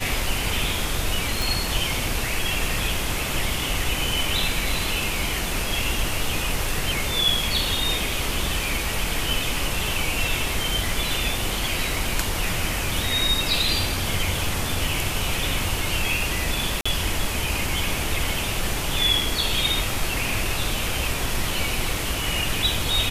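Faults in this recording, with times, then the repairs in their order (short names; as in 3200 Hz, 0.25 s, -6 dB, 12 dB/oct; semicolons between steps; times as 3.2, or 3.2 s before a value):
1.42 pop
16.81–16.86 gap 45 ms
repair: de-click; interpolate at 16.81, 45 ms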